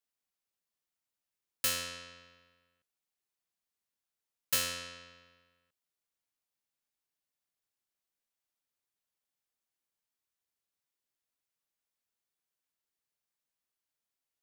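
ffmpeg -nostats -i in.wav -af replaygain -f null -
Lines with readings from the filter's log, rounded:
track_gain = +27.8 dB
track_peak = 0.098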